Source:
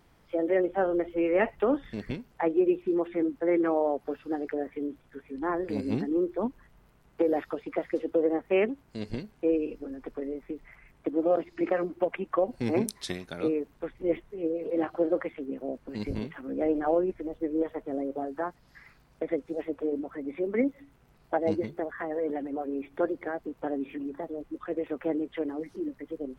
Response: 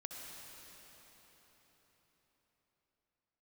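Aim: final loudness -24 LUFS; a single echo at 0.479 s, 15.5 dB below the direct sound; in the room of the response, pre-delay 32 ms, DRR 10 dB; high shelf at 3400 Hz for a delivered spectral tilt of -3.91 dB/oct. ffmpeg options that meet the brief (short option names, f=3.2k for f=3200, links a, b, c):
-filter_complex "[0:a]highshelf=f=3.4k:g=-8,aecho=1:1:479:0.168,asplit=2[a][b];[1:a]atrim=start_sample=2205,adelay=32[c];[b][c]afir=irnorm=-1:irlink=0,volume=-8dB[d];[a][d]amix=inputs=2:normalize=0,volume=6dB"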